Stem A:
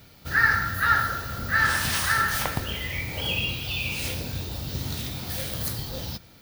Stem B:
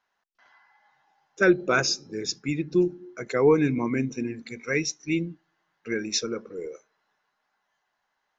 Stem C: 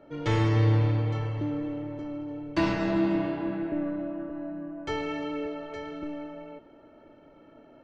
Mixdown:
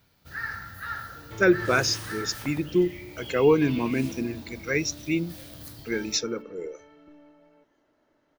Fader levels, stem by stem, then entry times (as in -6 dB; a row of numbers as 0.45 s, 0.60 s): -13.5 dB, 0.0 dB, -16.0 dB; 0.00 s, 0.00 s, 1.05 s